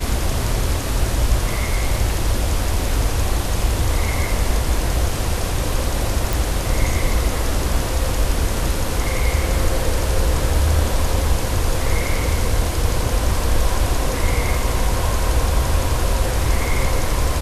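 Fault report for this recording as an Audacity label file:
6.330000	6.330000	pop

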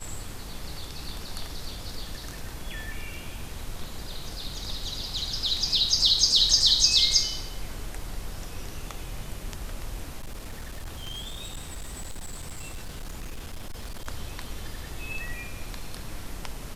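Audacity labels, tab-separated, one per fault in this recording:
10.210000	14.080000	clipped -32 dBFS

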